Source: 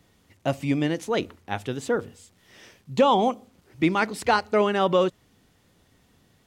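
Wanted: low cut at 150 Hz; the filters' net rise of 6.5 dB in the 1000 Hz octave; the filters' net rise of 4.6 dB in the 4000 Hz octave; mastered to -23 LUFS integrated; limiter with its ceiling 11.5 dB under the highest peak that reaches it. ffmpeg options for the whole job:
-af "highpass=150,equalizer=f=1k:t=o:g=8,equalizer=f=4k:t=o:g=5.5,volume=3.5dB,alimiter=limit=-10.5dB:level=0:latency=1"

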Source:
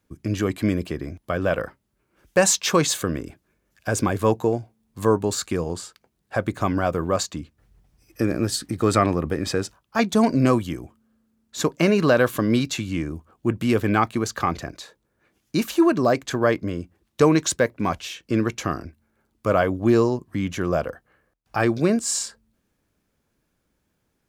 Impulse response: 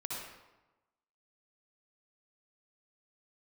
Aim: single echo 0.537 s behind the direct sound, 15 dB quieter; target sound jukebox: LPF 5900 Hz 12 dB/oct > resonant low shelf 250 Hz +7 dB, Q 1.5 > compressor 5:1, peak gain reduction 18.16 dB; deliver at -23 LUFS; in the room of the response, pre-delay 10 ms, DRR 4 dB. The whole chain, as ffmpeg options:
-filter_complex "[0:a]aecho=1:1:537:0.178,asplit=2[a][b];[1:a]atrim=start_sample=2205,adelay=10[c];[b][c]afir=irnorm=-1:irlink=0,volume=-5.5dB[d];[a][d]amix=inputs=2:normalize=0,lowpass=5.9k,lowshelf=f=250:t=q:w=1.5:g=7,acompressor=threshold=-28dB:ratio=5,volume=8.5dB"

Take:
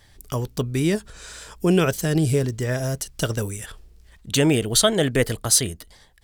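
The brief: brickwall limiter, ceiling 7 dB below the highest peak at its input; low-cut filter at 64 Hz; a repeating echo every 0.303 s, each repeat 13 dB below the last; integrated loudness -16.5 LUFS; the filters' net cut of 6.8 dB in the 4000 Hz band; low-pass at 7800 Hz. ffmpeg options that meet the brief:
-af "highpass=64,lowpass=7.8k,equalizer=f=4k:t=o:g=-8.5,alimiter=limit=-14dB:level=0:latency=1,aecho=1:1:303|606|909:0.224|0.0493|0.0108,volume=8.5dB"

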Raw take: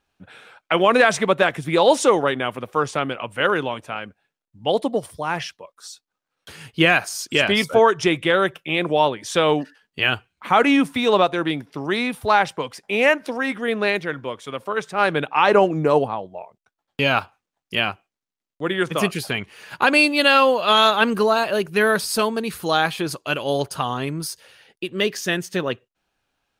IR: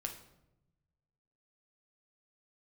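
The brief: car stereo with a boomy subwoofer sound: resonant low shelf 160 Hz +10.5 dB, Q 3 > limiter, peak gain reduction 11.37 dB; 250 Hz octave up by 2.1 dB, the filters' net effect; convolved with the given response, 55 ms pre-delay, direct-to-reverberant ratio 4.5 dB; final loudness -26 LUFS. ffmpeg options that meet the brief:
-filter_complex "[0:a]equalizer=f=250:t=o:g=7.5,asplit=2[a][b];[1:a]atrim=start_sample=2205,adelay=55[c];[b][c]afir=irnorm=-1:irlink=0,volume=-3.5dB[d];[a][d]amix=inputs=2:normalize=0,lowshelf=f=160:t=q:w=3:g=10.5,volume=-3.5dB,alimiter=limit=-16dB:level=0:latency=1"

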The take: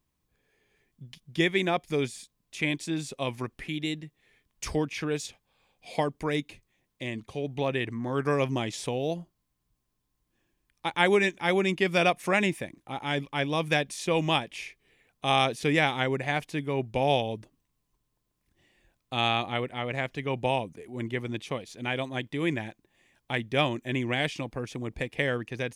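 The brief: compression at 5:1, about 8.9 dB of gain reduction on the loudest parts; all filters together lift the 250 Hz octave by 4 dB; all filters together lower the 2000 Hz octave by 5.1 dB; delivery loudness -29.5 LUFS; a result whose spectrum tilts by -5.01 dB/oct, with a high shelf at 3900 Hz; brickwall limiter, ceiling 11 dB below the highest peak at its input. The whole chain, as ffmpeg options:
-af "equalizer=f=250:t=o:g=5.5,equalizer=f=2k:t=o:g=-7.5,highshelf=f=3.9k:g=4,acompressor=threshold=-27dB:ratio=5,volume=7dB,alimiter=limit=-18.5dB:level=0:latency=1"

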